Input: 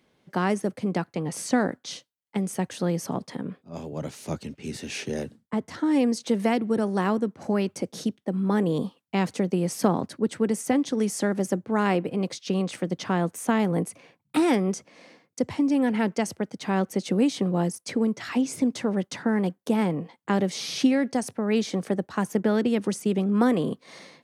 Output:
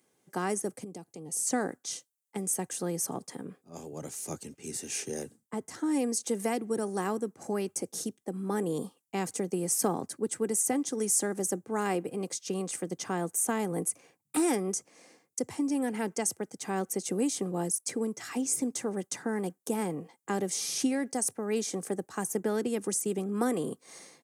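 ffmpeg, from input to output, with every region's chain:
-filter_complex "[0:a]asettb=1/sr,asplit=3[a][b][c];[a]atrim=end=0.844[d];[b]atrim=start=0.84:end=1.47,asetpts=PTS-STARTPTS,afade=t=in:d=0.004:c=qsin,afade=t=out:st=0.626:d=0.004:c=qsin,acompressor=threshold=-37dB:ratio=2:attack=3.2:release=140:knee=1:detection=peak,equalizer=f=1.5k:t=o:w=1.2:g=-13.5[e];[c]atrim=start=1.466[f];[d][e]acrossfade=d=0.004:c1=hsin:c2=qsin[g];[g][f]acrossfade=d=0.004:c1=qsin:c2=hsin,highpass=120,highshelf=f=5.5k:t=q:w=1.5:g=12.5,aecho=1:1:2.5:0.31,volume=-6.5dB"

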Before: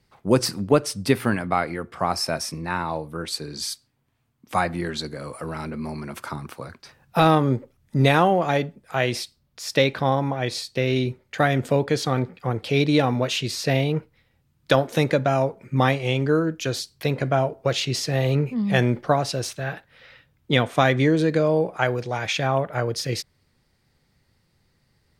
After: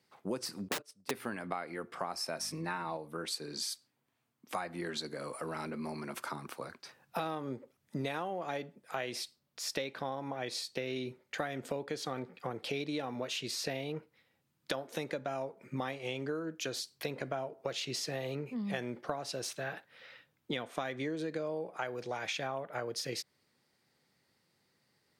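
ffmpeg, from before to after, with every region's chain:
-filter_complex "[0:a]asettb=1/sr,asplit=3[a][b][c];[a]atrim=end=0.684[d];[b]atrim=start=0.68:end=1.11,asetpts=PTS-STARTPTS,afade=t=in:d=0.004:c=qsin,afade=t=out:st=0.426:d=0.004:c=qsin,agate=range=-23dB:threshold=-26dB:ratio=16:release=100:detection=peak,aeval=exprs='(mod(5.31*val(0)+1,2)-1)/5.31':c=same[e];[c]atrim=start=1.106[f];[d][e]acrossfade=d=0.004:c1=hsin:c2=qsin[g];[g][f]acrossfade=d=0.004:c1=qsin:c2=hsin,asettb=1/sr,asplit=3[h][i][j];[h]atrim=end=2.394[k];[i]atrim=start=2.39:end=2.97,asetpts=PTS-STARTPTS,afade=t=in:d=0.004:c=qsin,afade=t=out:st=0.576:d=0.004:c=qsin,aecho=1:1:6.4:0.79,atrim=end_sample=25578,aeval=exprs='val(0)+0.0158*(sin(2*PI*50*n/s)+sin(2*PI*2*50*n/s)/2+sin(2*PI*3*50*n/s)/3+sin(2*PI*4*50*n/s)/4+sin(2*PI*5*50*n/s)/5)':c=same[l];[j]atrim=start=2.966[m];[k][l]acrossfade=d=0.004:c1=hsin:c2=qsin[n];[n][m]acrossfade=d=0.004:c1=qsin:c2=hsin,highpass=180,bass=f=250:g=-3,treble=f=4k:g=1,acompressor=threshold=-29dB:ratio=6,volume=-5dB"

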